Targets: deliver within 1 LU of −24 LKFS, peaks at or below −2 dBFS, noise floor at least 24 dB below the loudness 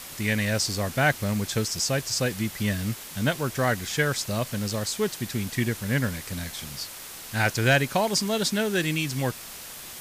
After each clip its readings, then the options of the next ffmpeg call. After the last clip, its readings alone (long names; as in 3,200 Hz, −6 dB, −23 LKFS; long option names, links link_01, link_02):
background noise floor −41 dBFS; target noise floor −50 dBFS; integrated loudness −26.0 LKFS; sample peak −10.5 dBFS; target loudness −24.0 LKFS
→ -af "afftdn=noise_reduction=9:noise_floor=-41"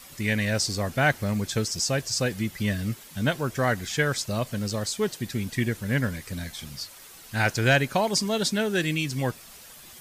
background noise floor −47 dBFS; target noise floor −51 dBFS
→ -af "afftdn=noise_reduction=6:noise_floor=-47"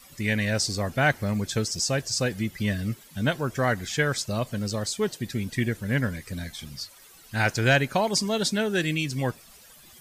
background noise floor −51 dBFS; integrated loudness −26.5 LKFS; sample peak −10.5 dBFS; target loudness −24.0 LKFS
→ -af "volume=2.5dB"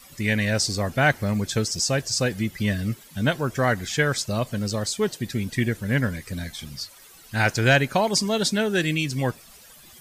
integrated loudness −24.0 LKFS; sample peak −8.0 dBFS; background noise floor −49 dBFS